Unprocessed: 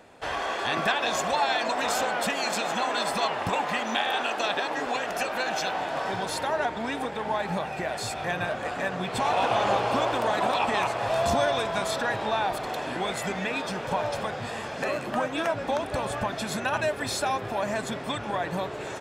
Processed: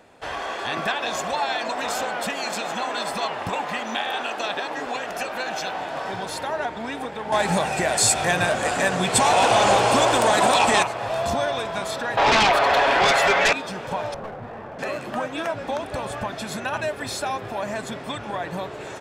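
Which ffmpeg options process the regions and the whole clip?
ffmpeg -i in.wav -filter_complex "[0:a]asettb=1/sr,asplit=3[link_01][link_02][link_03];[link_01]atrim=end=7.324[link_04];[link_02]atrim=start=7.32:end=10.83,asetpts=PTS-STARTPTS,afade=type=in:duration=0.004:curve=qsin,afade=type=out:start_time=3.506:duration=0.004:curve=qsin,aeval=exprs='0.282*sin(PI/2*1.58*val(0)/0.282)':channel_layout=same,equalizer=frequency=8300:width_type=o:width=1.2:gain=13.5,bandreject=frequency=1200:width=25[link_05];[link_03]atrim=start=10.826[link_06];[link_04][link_05]acrossfade=duration=0.004:curve1=hsin:curve2=qsin[link_07];[link_07][link_06]acrossfade=duration=0.004:curve1=qsin:curve2=hsin,asettb=1/sr,asplit=3[link_08][link_09][link_10];[link_08]atrim=end=12.174[link_11];[link_09]atrim=start=12.17:end=13.53,asetpts=PTS-STARTPTS,afade=type=in:duration=0.004:curve=qsin,afade=type=out:start_time=1.356:duration=0.004:curve=qsin,acrossover=split=450 3800:gain=0.0708 1 0.178[link_12][link_13][link_14];[link_12][link_13][link_14]amix=inputs=3:normalize=0,aecho=1:1:7.2:0.69,atrim=end_sample=59976,aeval=exprs='0.211*sin(PI/2*4.47*val(0)/0.211)':channel_layout=same[link_15];[link_10]atrim=start=13.526[link_16];[link_11][link_15]acrossfade=duration=0.004:curve1=hsin:curve2=qsin[link_17];[link_17][link_16]acrossfade=duration=0.004:curve1=qsin:curve2=hsin,asettb=1/sr,asplit=3[link_18][link_19][link_20];[link_18]atrim=end=14.144[link_21];[link_19]atrim=start=14.14:end=14.79,asetpts=PTS-STARTPTS,afade=type=in:duration=0.004:curve=qsin,afade=type=out:start_time=0.646:duration=0.004:curve=qsin,lowpass=1200,aeval=exprs='clip(val(0),-1,0.02)':channel_layout=same[link_22];[link_20]atrim=start=14.786[link_23];[link_21][link_22]acrossfade=duration=0.004:curve1=hsin:curve2=qsin[link_24];[link_24][link_23]acrossfade=duration=0.004:curve1=qsin:curve2=hsin" out.wav

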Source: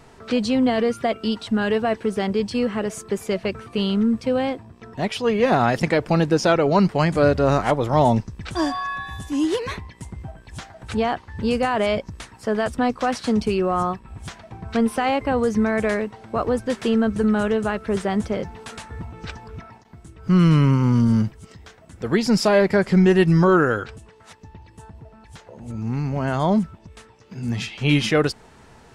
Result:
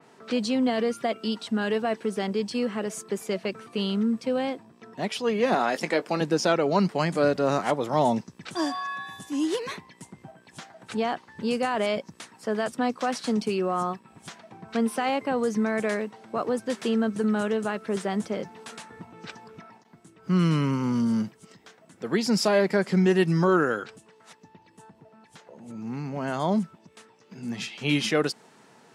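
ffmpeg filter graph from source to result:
ffmpeg -i in.wav -filter_complex "[0:a]asettb=1/sr,asplit=3[link_01][link_02][link_03];[link_01]atrim=end=5.544[link_04];[link_02]atrim=start=5.54:end=6.21,asetpts=PTS-STARTPTS,afade=type=in:duration=0.004:curve=qsin,afade=type=out:start_time=0.666:duration=0.004:curve=qsin,highpass=260,asplit=2[link_05][link_06];[link_06]adelay=19,volume=-12dB[link_07];[link_05][link_07]amix=inputs=2:normalize=0,atrim=end_sample=29547[link_08];[link_03]atrim=start=6.206[link_09];[link_04][link_08]acrossfade=duration=0.004:curve1=hsin:curve2=qsin[link_10];[link_10][link_09]acrossfade=duration=0.004:curve1=qsin:curve2=hsin,highpass=frequency=160:width=0.5412,highpass=frequency=160:width=1.3066,adynamicequalizer=threshold=0.0126:dfrequency=3700:dqfactor=0.7:tfrequency=3700:tqfactor=0.7:attack=5:release=100:ratio=0.375:range=2:mode=boostabove:tftype=highshelf,volume=-5dB" out.wav

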